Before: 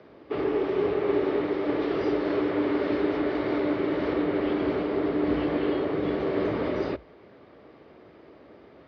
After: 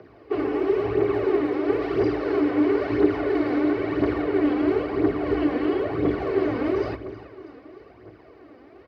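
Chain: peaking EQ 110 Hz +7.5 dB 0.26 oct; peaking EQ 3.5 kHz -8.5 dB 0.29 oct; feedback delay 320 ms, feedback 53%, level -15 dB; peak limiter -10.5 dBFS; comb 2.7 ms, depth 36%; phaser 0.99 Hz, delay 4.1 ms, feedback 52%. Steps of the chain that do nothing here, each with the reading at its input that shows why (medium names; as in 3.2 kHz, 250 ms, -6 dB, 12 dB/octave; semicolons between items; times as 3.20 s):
peak limiter -10.5 dBFS: peak at its input -13.0 dBFS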